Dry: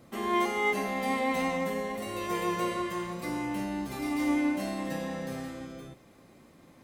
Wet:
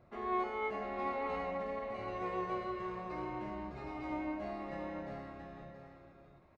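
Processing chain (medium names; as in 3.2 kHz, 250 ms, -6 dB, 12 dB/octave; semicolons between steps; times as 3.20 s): tape spacing loss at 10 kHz 41 dB; comb 3.1 ms, depth 30%; tape speed +4%; peaking EQ 270 Hz -14 dB 0.79 oct; band-stop 3.2 kHz, Q 9.4; delay 677 ms -7.5 dB; trim -2 dB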